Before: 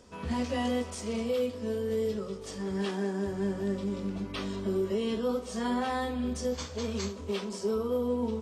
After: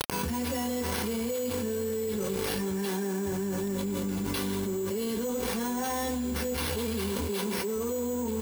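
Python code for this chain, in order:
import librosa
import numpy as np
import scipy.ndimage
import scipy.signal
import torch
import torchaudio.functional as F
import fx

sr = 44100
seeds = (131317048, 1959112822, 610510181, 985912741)

y = fx.delta_mod(x, sr, bps=64000, step_db=-48.0)
y = np.repeat(y[::6], 6)[:len(y)]
y = np.sign(y) * np.maximum(np.abs(y) - 10.0 ** (-49.5 / 20.0), 0.0)
y = fx.high_shelf(y, sr, hz=5400.0, db=10.0)
y = 10.0 ** (-24.0 / 20.0) * np.tanh(y / 10.0 ** (-24.0 / 20.0))
y = fx.notch_comb(y, sr, f0_hz=630.0)
y = fx.env_flatten(y, sr, amount_pct=100)
y = y * 10.0 ** (-1.5 / 20.0)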